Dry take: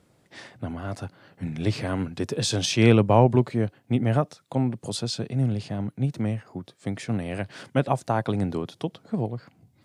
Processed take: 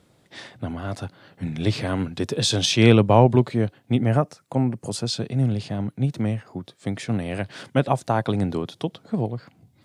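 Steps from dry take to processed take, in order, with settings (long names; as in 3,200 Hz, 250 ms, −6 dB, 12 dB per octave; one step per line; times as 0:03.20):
parametric band 3,600 Hz +5 dB 0.42 octaves, from 0:04.06 −9 dB, from 0:05.07 +3 dB
level +2.5 dB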